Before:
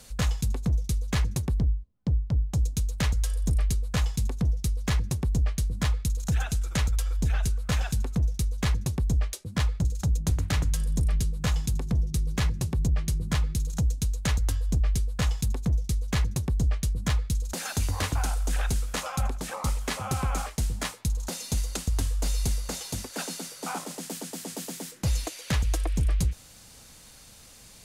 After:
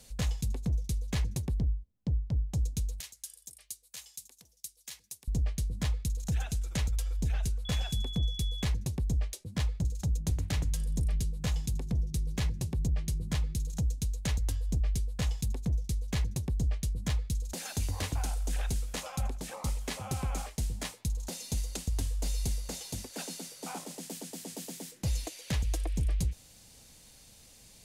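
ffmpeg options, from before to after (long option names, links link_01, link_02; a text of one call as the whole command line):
ffmpeg -i in.wav -filter_complex "[0:a]asettb=1/sr,asplit=3[link_01][link_02][link_03];[link_01]atrim=end=3.004[link_04];[link_02]atrim=start=3:end=5.28,asetpts=PTS-STARTPTS,afade=type=in:duration=0.004:curve=qsin,afade=type=out:start_time=2.276:duration=0.004:curve=qsin,aderivative[link_05];[link_03]atrim=start=5.276[link_06];[link_04][link_05]acrossfade=duration=0.004:curve1=hsin:curve2=qsin[link_07];[link_07][link_06]acrossfade=duration=0.004:curve1=qsin:curve2=hsin,asettb=1/sr,asplit=3[link_08][link_09][link_10];[link_08]atrim=end=7.654[link_11];[link_09]atrim=start=7.65:end=8.64,asetpts=PTS-STARTPTS,afade=type=in:duration=0.004:curve=qsin,afade=type=out:start_time=0.986:duration=0.004:curve=qsin,aeval=exprs='val(0)+0.0178*sin(2*PI*3400*n/s)':channel_layout=same[link_12];[link_10]atrim=start=8.636[link_13];[link_11][link_12]acrossfade=duration=0.004:curve1=hsin:curve2=qsin[link_14];[link_14][link_13]acrossfade=duration=0.004:curve1=qsin:curve2=hsin,equalizer=frequency=1300:width_type=o:width=0.86:gain=-7,volume=-5dB" out.wav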